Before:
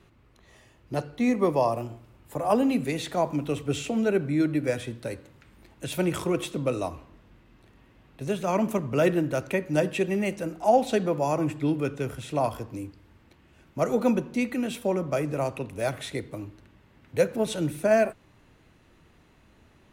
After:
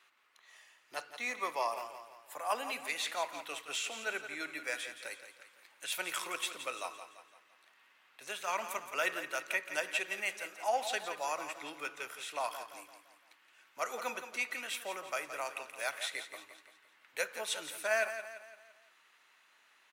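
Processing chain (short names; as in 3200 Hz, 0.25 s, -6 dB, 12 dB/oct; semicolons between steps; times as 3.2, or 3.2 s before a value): Chebyshev high-pass 1400 Hz, order 2; feedback echo 0.17 s, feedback 46%, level -10.5 dB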